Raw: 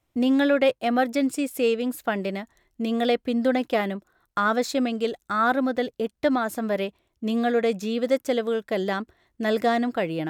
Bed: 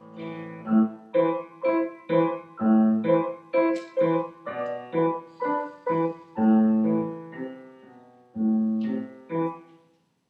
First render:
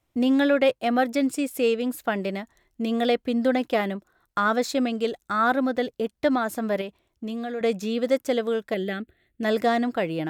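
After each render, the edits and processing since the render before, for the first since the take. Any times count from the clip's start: 6.81–7.61 s: compression 4:1, threshold -29 dBFS; 8.74–9.43 s: static phaser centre 2.4 kHz, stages 4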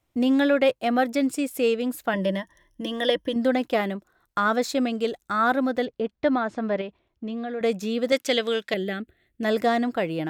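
2.13–3.36 s: rippled EQ curve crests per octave 1.2, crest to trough 15 dB; 5.85–7.61 s: Gaussian low-pass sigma 1.8 samples; 8.12–8.74 s: frequency weighting D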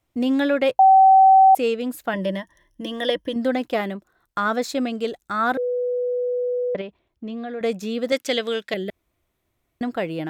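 0.79–1.55 s: bleep 767 Hz -8.5 dBFS; 5.57–6.75 s: bleep 493 Hz -20.5 dBFS; 8.90–9.81 s: room tone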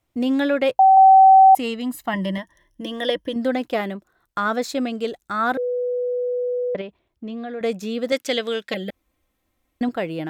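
0.97–2.38 s: comb 1 ms; 8.69–9.89 s: comb 3.8 ms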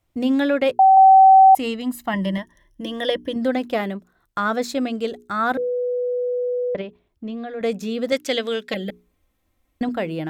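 bass shelf 140 Hz +6.5 dB; hum notches 60/120/180/240/300/360/420 Hz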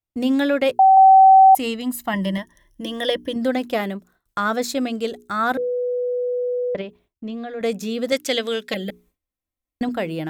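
gate with hold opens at -51 dBFS; treble shelf 5.6 kHz +8 dB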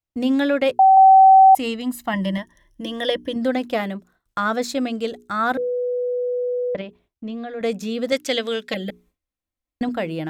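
treble shelf 10 kHz -9.5 dB; band-stop 400 Hz, Q 12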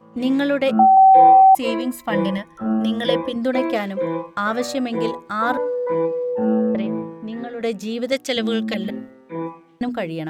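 add bed -1 dB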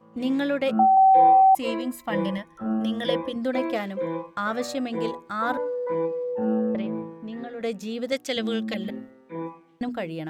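trim -5.5 dB

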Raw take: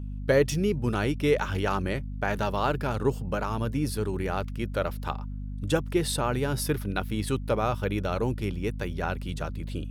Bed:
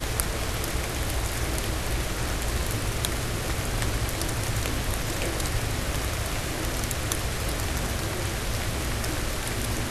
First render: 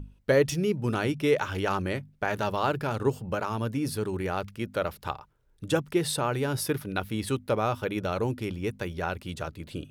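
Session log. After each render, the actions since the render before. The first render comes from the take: hum notches 50/100/150/200/250 Hz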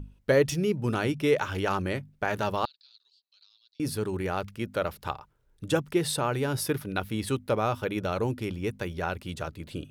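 2.65–3.80 s: Butterworth band-pass 4.2 kHz, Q 5.1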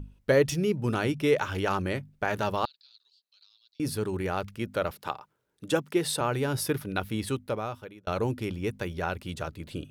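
4.91–6.21 s: high-pass 180 Hz; 7.16–8.07 s: fade out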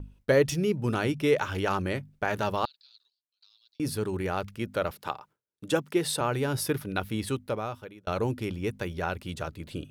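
gate with hold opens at -49 dBFS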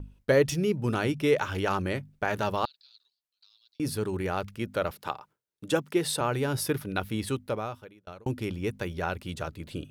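7.61–8.26 s: fade out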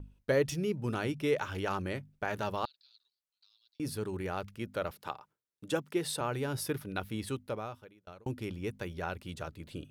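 trim -6 dB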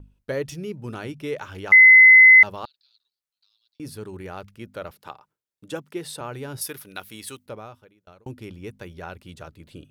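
1.72–2.43 s: bleep 2.04 kHz -6.5 dBFS; 6.61–7.46 s: tilt EQ +3 dB/octave

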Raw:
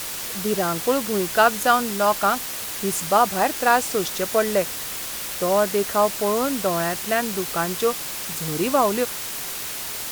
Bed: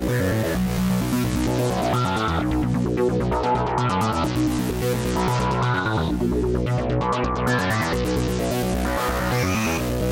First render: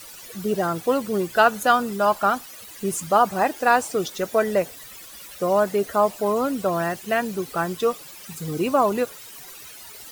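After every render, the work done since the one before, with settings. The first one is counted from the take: noise reduction 15 dB, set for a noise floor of -31 dBFS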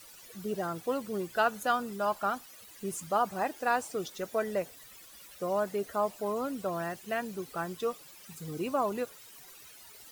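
trim -10.5 dB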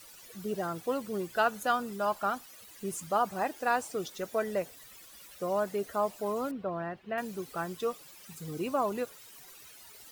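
6.51–7.18 s: distance through air 380 m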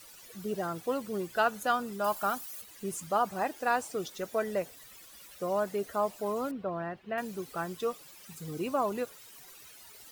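2.04–2.62 s: treble shelf 7.2 kHz +12 dB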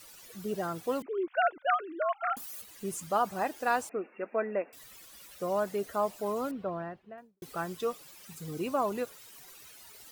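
1.02–2.37 s: formants replaced by sine waves; 3.89–4.73 s: brick-wall FIR band-pass 190–2800 Hz; 6.61–7.42 s: studio fade out

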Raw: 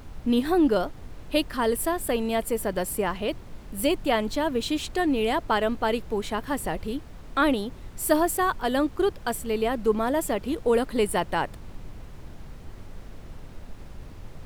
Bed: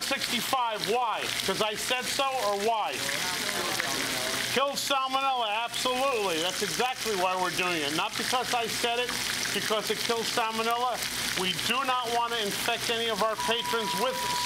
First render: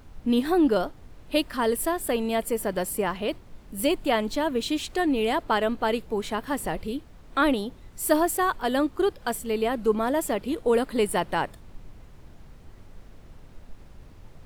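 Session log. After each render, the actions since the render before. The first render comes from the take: noise print and reduce 6 dB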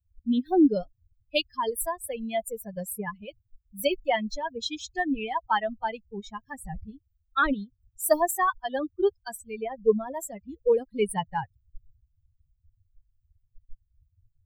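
expander on every frequency bin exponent 3; level rider gain up to 5 dB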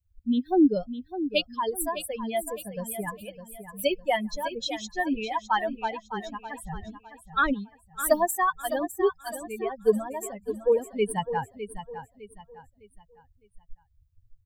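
feedback delay 607 ms, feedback 35%, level -11 dB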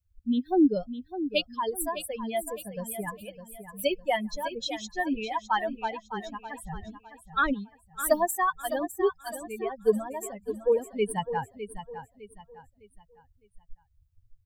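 trim -1.5 dB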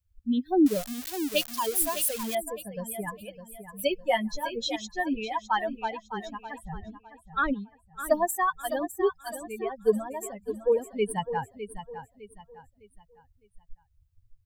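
0.66–2.35 s: zero-crossing glitches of -22.5 dBFS; 3.98–4.76 s: doubling 13 ms -3.5 dB; 6.58–8.23 s: treble shelf 3.1 kHz -10 dB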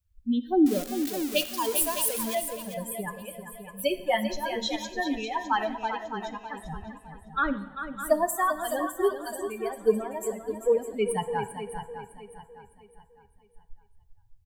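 delay 394 ms -9.5 dB; two-slope reverb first 0.8 s, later 2.6 s, DRR 11 dB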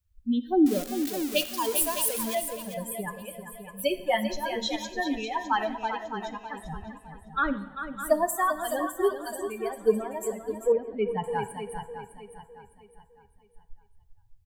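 10.72–11.24 s: distance through air 370 m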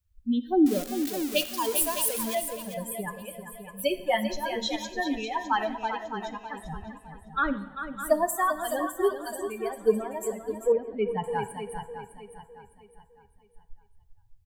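no audible change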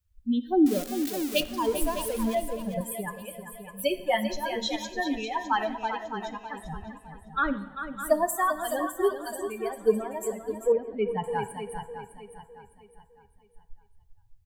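1.40–2.81 s: tilt EQ -3 dB/octave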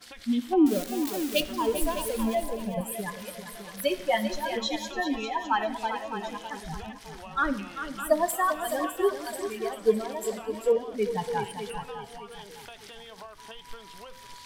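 add bed -18 dB

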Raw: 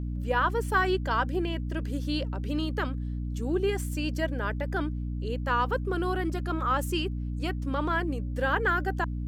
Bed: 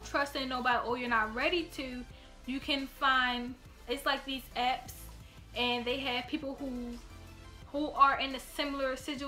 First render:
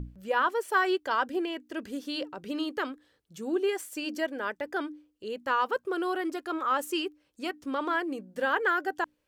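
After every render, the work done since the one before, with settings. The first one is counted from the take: hum notches 60/120/180/240/300 Hz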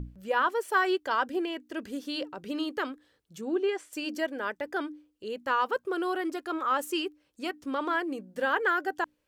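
3.41–3.93 s: distance through air 91 m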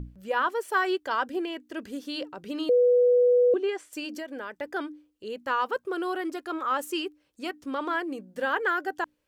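2.69–3.54 s: bleep 491 Hz -16.5 dBFS; 4.05–4.54 s: compression 5:1, threshold -32 dBFS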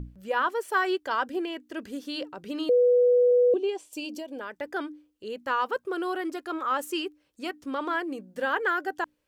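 3.31–4.41 s: high-order bell 1.6 kHz -13 dB 1 oct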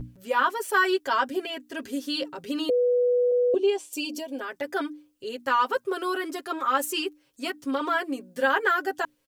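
treble shelf 4.2 kHz +7 dB; comb 7.4 ms, depth 94%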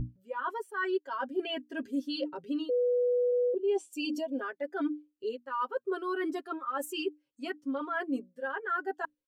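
reverse; compression 12:1, threshold -33 dBFS, peak gain reduction 16.5 dB; reverse; spectral contrast expander 1.5:1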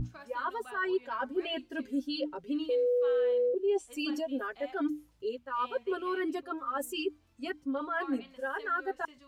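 add bed -19 dB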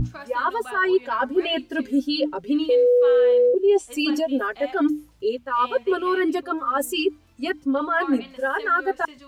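trim +11 dB

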